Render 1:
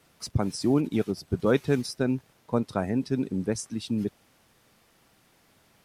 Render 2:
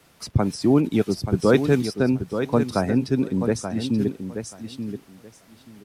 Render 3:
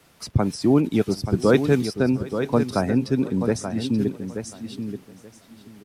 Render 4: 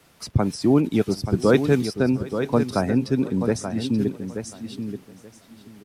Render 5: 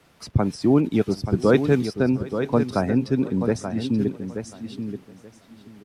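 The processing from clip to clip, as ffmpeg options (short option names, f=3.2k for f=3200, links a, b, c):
-filter_complex "[0:a]aecho=1:1:881|1762|2643:0.376|0.0639|0.0109,acrossover=split=220|3700[a][b][c];[c]alimiter=level_in=7.5dB:limit=-24dB:level=0:latency=1:release=345,volume=-7.5dB[d];[a][b][d]amix=inputs=3:normalize=0,volume=5.5dB"
-af "aecho=1:1:721:0.1"
-af anull
-af "highshelf=f=5.8k:g=-8.5"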